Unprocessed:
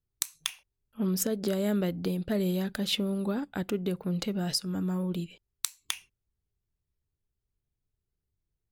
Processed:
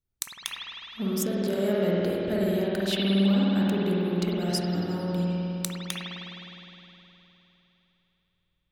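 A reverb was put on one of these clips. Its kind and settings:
spring reverb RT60 3.4 s, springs 51 ms, chirp 50 ms, DRR −6 dB
level −2 dB

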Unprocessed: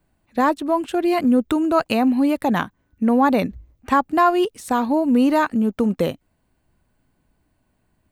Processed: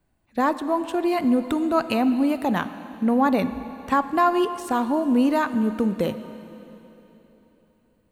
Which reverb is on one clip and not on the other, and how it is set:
dense smooth reverb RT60 3.5 s, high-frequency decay 1×, DRR 11 dB
level −3.5 dB

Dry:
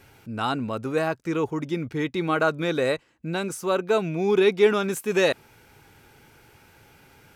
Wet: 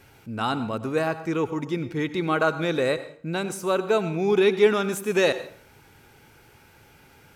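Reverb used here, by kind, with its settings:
dense smooth reverb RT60 0.51 s, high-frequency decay 0.8×, pre-delay 75 ms, DRR 13 dB

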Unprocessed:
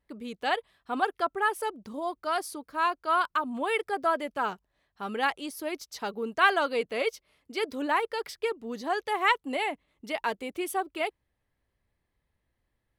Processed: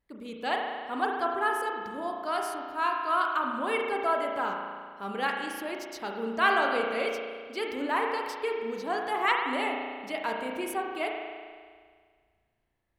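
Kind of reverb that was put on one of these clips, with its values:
spring reverb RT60 1.8 s, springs 35 ms, chirp 75 ms, DRR 0.5 dB
level −3 dB

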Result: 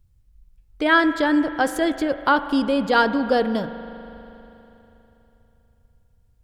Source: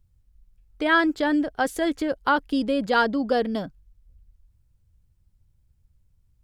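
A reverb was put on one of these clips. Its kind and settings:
spring reverb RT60 3.4 s, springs 40 ms, chirp 60 ms, DRR 11 dB
level +3 dB

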